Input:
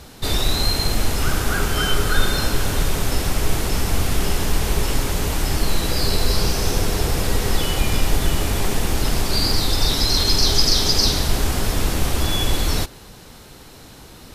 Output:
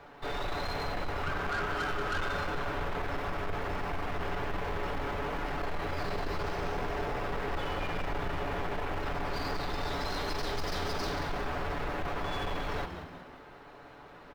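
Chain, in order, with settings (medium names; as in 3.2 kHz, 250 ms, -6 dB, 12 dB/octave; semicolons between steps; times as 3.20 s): median filter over 5 samples; three-band isolator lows -14 dB, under 440 Hz, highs -20 dB, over 2.2 kHz; comb 7 ms; saturation -26 dBFS, distortion -11 dB; on a send: frequency-shifting echo 183 ms, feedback 48%, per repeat -94 Hz, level -9 dB; on the sum: trim -3 dB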